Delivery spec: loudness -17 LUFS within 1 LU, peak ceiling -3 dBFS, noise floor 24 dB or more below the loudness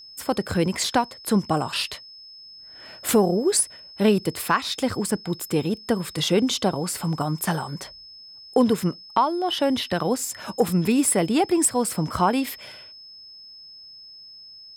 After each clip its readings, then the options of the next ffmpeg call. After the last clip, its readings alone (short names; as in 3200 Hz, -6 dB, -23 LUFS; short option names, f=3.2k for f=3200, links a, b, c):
steady tone 5200 Hz; tone level -42 dBFS; loudness -23.5 LUFS; peak -7.5 dBFS; loudness target -17.0 LUFS
-> -af "bandreject=f=5.2k:w=30"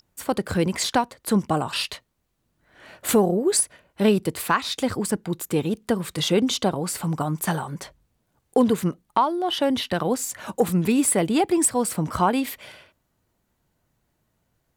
steady tone none; loudness -23.5 LUFS; peak -7.5 dBFS; loudness target -17.0 LUFS
-> -af "volume=6.5dB,alimiter=limit=-3dB:level=0:latency=1"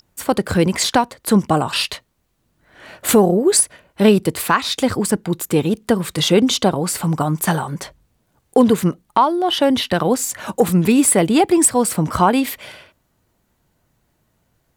loudness -17.0 LUFS; peak -3.0 dBFS; noise floor -67 dBFS